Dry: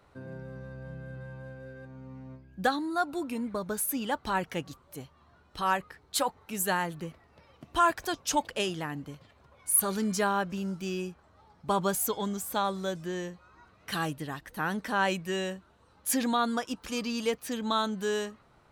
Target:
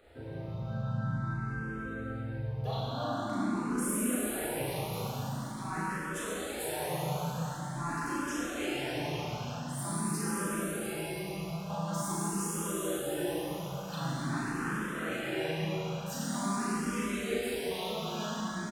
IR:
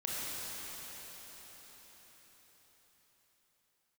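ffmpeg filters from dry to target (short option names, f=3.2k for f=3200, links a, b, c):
-filter_complex "[0:a]areverse,acompressor=threshold=-39dB:ratio=16,areverse,asplit=2[a][b];[b]asetrate=37084,aresample=44100,atempo=1.18921,volume=0dB[c];[a][c]amix=inputs=2:normalize=0,asplit=2[d][e];[e]adelay=37,volume=-3dB[f];[d][f]amix=inputs=2:normalize=0,asplit=2[g][h];[h]asoftclip=type=tanh:threshold=-33.5dB,volume=-6dB[i];[g][i]amix=inputs=2:normalize=0[j];[1:a]atrim=start_sample=2205[k];[j][k]afir=irnorm=-1:irlink=0,asplit=2[l][m];[m]afreqshift=0.46[n];[l][n]amix=inputs=2:normalize=1"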